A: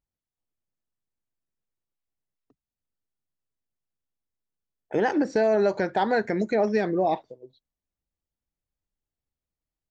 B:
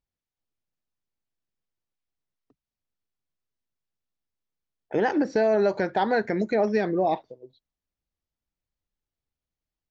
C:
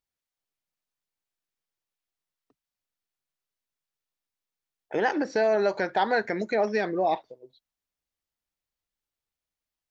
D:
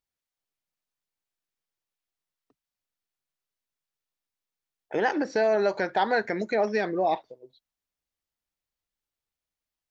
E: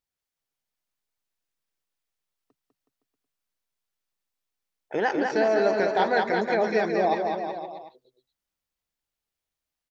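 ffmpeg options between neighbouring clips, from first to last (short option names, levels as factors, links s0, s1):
-af "lowpass=f=6200:w=0.5412,lowpass=f=6200:w=1.3066"
-af "lowshelf=f=410:g=-11,volume=1.33"
-af anull
-af "aecho=1:1:200|370|514.5|637.3|741.7:0.631|0.398|0.251|0.158|0.1"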